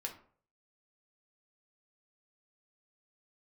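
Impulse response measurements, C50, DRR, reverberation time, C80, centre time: 10.5 dB, 0.5 dB, 0.50 s, 15.0 dB, 15 ms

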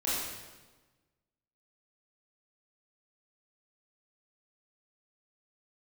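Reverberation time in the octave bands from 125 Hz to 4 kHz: 1.6 s, 1.4 s, 1.3 s, 1.2 s, 1.1 s, 1.1 s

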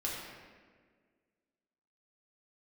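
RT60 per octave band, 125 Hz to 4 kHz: 1.7 s, 2.1 s, 1.9 s, 1.4 s, 1.5 s, 1.1 s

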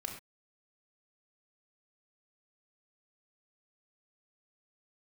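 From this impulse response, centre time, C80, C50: 25 ms, 9.5 dB, 6.0 dB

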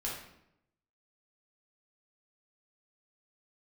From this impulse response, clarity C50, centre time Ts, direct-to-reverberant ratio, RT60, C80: 2.0 dB, 47 ms, -5.5 dB, 0.80 s, 6.5 dB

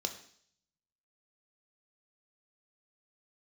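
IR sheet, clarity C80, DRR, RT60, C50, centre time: 13.5 dB, 5.5 dB, 0.60 s, 10.5 dB, 13 ms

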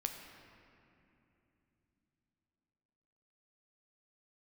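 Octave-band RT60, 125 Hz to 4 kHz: 4.5 s, 4.6 s, 3.3 s, 2.7 s, 2.7 s, 1.8 s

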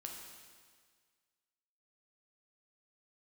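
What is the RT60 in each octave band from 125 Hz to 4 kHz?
1.7 s, 1.7 s, 1.7 s, 1.7 s, 1.7 s, 1.7 s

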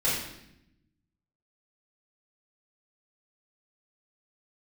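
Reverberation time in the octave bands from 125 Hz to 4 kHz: 1.5 s, 1.3 s, 0.85 s, 0.75 s, 0.80 s, 0.75 s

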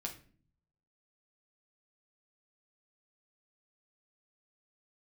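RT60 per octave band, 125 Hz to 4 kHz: 1.0 s, 0.80 s, 0.55 s, 0.35 s, 0.40 s, 0.35 s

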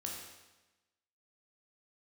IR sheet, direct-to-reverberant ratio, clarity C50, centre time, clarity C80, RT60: -1.5 dB, 2.0 dB, 58 ms, 4.0 dB, 1.1 s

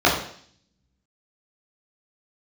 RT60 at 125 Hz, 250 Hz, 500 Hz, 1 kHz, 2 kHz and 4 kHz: 0.90 s, 0.70 s, 0.55 s, 0.55 s, 0.60 s, 0.70 s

